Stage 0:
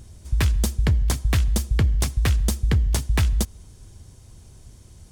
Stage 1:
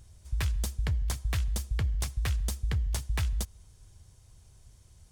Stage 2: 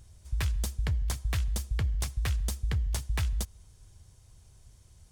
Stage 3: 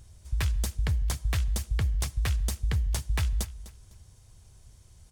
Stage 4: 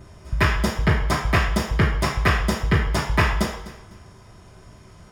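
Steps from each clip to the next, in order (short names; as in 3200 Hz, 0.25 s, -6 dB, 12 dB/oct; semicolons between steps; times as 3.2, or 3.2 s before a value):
bell 270 Hz -9 dB 1.4 oct; gain -8.5 dB
nothing audible
feedback echo 0.252 s, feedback 26%, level -16.5 dB; gain +2 dB
reverb RT60 0.60 s, pre-delay 3 ms, DRR -11 dB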